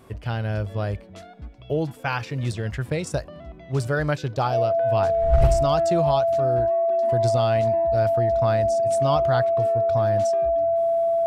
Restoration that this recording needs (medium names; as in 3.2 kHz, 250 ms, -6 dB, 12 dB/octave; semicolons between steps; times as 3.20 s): clip repair -9.5 dBFS; band-stop 670 Hz, Q 30